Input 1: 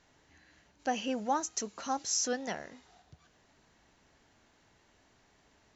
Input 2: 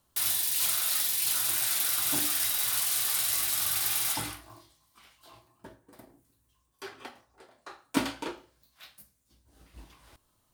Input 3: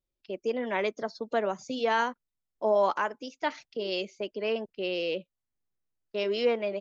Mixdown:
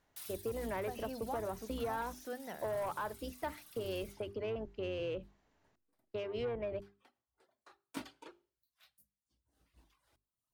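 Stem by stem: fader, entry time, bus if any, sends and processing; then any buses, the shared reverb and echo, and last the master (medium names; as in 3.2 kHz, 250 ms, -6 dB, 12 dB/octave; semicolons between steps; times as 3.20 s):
-7.5 dB, 0.00 s, bus A, no send, de-esser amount 100%
-15.5 dB, 0.00 s, no bus, no send, reverb removal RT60 0.98 s; auto duck -12 dB, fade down 0.70 s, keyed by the third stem
-1.5 dB, 0.00 s, bus A, no send, octave divider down 2 oct, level -3 dB; low-pass that closes with the level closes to 2 kHz, closed at -23 dBFS; saturation -23.5 dBFS, distortion -13 dB
bus A: 0.0 dB, treble shelf 2.7 kHz -9 dB; compression 6:1, threshold -35 dBFS, peak gain reduction 7.5 dB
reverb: none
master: hum notches 50/100/150/200/250/300/350/400 Hz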